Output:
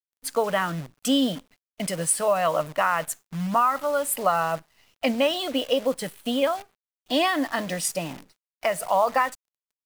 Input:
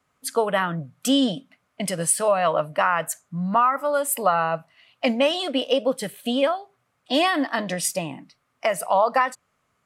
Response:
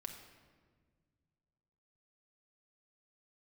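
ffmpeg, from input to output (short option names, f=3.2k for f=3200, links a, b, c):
-af "acrusher=bits=7:dc=4:mix=0:aa=0.000001,volume=-2dB"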